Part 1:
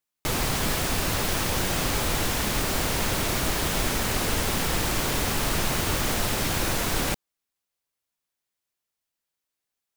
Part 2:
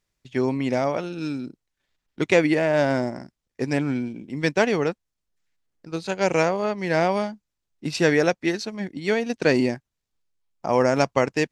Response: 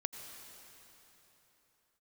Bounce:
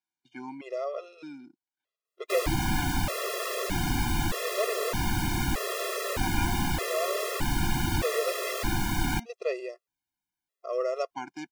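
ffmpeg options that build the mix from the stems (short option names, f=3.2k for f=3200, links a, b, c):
-filter_complex "[0:a]lowpass=f=2.1k:p=1,adelay=2050,volume=1dB[a];[1:a]highpass=420,aemphasis=mode=reproduction:type=75fm,bandreject=f=1.8k:w=6.6,volume=-7dB[b];[a][b]amix=inputs=2:normalize=0,highshelf=f=8.1k:g=11.5,afftfilt=real='re*gt(sin(2*PI*0.81*pts/sr)*(1-2*mod(floor(b*sr/1024/350),2)),0)':imag='im*gt(sin(2*PI*0.81*pts/sr)*(1-2*mod(floor(b*sr/1024/350),2)),0)':win_size=1024:overlap=0.75"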